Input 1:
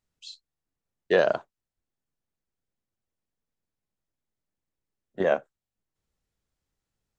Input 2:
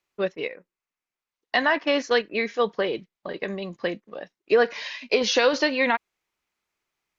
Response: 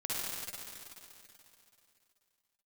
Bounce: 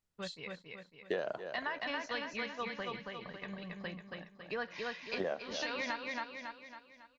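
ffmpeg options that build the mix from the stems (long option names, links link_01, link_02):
-filter_complex "[0:a]volume=-4dB,asplit=3[link_01][link_02][link_03];[link_02]volume=-16.5dB[link_04];[1:a]lowshelf=frequency=380:gain=12,agate=range=-8dB:threshold=-40dB:ratio=16:detection=peak,firequalizer=gain_entry='entry(110,0);entry(350,-14);entry(910,2)':delay=0.05:min_phase=1,volume=-15dB,asplit=2[link_05][link_06];[link_06]volume=-3.5dB[link_07];[link_03]apad=whole_len=321168[link_08];[link_05][link_08]sidechaincompress=threshold=-44dB:ratio=8:attack=16:release=184[link_09];[link_04][link_07]amix=inputs=2:normalize=0,aecho=0:1:276|552|828|1104|1380|1656:1|0.46|0.212|0.0973|0.0448|0.0206[link_10];[link_01][link_09][link_10]amix=inputs=3:normalize=0,acompressor=threshold=-33dB:ratio=6"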